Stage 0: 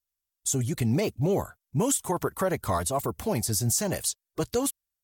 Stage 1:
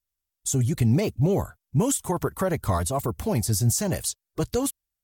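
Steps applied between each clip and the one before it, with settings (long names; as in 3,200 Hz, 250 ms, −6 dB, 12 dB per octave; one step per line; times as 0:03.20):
low-shelf EQ 170 Hz +9 dB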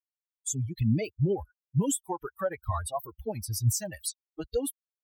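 spectral dynamics exaggerated over time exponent 3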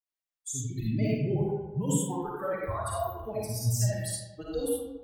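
convolution reverb RT60 1.1 s, pre-delay 15 ms, DRR −6 dB
level −6 dB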